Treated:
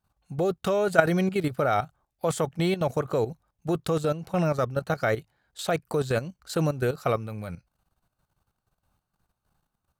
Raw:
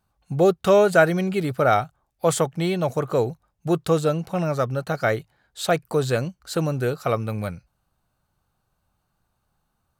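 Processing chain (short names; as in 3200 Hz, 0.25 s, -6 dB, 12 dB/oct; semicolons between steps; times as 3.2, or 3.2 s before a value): level quantiser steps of 12 dB; gain +1 dB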